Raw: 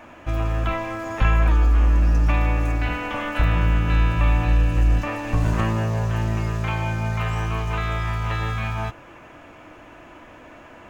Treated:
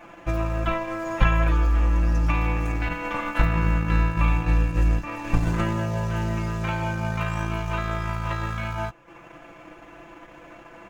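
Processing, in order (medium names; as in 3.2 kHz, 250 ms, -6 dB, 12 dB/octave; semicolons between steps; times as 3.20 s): comb 5.9 ms, depth 87%; transient shaper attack +4 dB, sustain -9 dB; trim -3.5 dB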